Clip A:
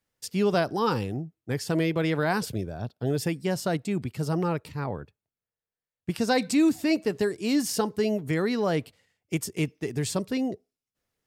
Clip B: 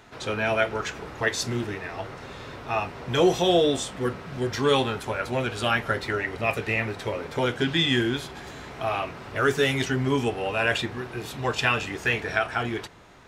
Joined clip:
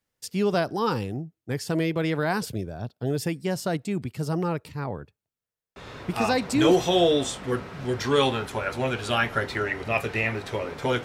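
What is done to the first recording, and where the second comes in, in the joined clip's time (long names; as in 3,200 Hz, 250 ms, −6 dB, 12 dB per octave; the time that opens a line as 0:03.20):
clip A
0:06.26: continue with clip B from 0:02.79, crossfade 1.00 s logarithmic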